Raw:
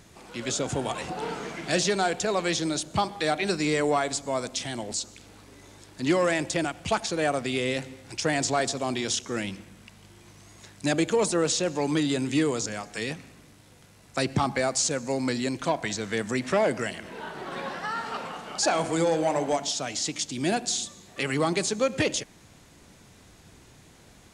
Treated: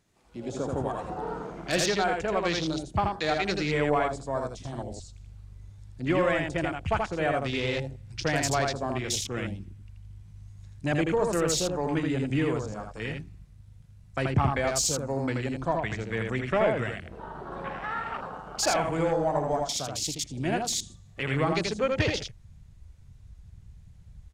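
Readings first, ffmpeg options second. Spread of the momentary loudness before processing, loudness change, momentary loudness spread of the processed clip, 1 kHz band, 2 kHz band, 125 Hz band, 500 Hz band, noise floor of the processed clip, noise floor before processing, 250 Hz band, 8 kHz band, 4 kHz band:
10 LU, −1.0 dB, 16 LU, −0.5 dB, −1.0 dB, +3.5 dB, −1.0 dB, −52 dBFS, −54 dBFS, −2.5 dB, −3.5 dB, −3.0 dB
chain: -af "aeval=exprs='0.266*(cos(1*acos(clip(val(0)/0.266,-1,1)))-cos(1*PI/2))+0.0168*(cos(3*acos(clip(val(0)/0.266,-1,1)))-cos(3*PI/2))':channel_layout=same,asubboost=boost=5:cutoff=98,aecho=1:1:81:0.668,afwtdn=0.0178"

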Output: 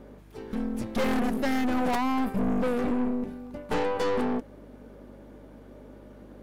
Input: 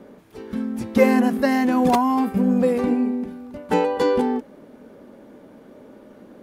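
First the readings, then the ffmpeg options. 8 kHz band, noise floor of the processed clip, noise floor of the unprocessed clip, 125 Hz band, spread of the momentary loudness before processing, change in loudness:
can't be measured, −49 dBFS, −48 dBFS, −6.5 dB, 12 LU, −8.0 dB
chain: -af "aeval=exprs='(tanh(15.8*val(0)+0.7)-tanh(0.7))/15.8':channel_layout=same,aeval=exprs='val(0)+0.00282*(sin(2*PI*50*n/s)+sin(2*PI*2*50*n/s)/2+sin(2*PI*3*50*n/s)/3+sin(2*PI*4*50*n/s)/4+sin(2*PI*5*50*n/s)/5)':channel_layout=same"

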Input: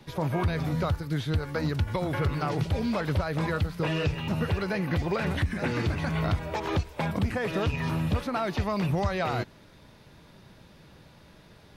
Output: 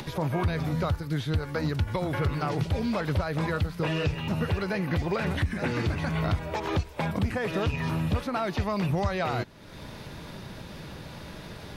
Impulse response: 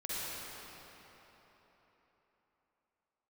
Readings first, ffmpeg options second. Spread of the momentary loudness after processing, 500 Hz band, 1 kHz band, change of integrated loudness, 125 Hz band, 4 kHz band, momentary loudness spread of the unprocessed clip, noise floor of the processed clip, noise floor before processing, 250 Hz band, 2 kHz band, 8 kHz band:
14 LU, 0.0 dB, 0.0 dB, 0.0 dB, 0.0 dB, +0.5 dB, 2 LU, −43 dBFS, −54 dBFS, 0.0 dB, 0.0 dB, +0.5 dB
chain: -af "acompressor=mode=upward:threshold=-29dB:ratio=2.5"

